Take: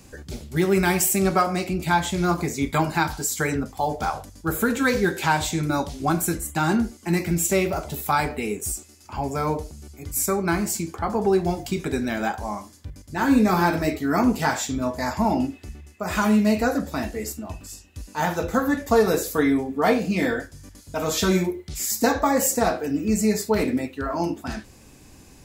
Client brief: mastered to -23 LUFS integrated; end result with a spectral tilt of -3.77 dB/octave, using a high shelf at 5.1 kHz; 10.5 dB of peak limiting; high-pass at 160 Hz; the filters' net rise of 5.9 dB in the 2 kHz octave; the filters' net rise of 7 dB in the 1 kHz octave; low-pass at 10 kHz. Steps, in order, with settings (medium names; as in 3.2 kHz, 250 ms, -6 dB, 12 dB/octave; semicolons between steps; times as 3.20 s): high-pass 160 Hz; low-pass 10 kHz; peaking EQ 1 kHz +8 dB; peaking EQ 2 kHz +4 dB; treble shelf 5.1 kHz +3.5 dB; trim +0.5 dB; peak limiter -11.5 dBFS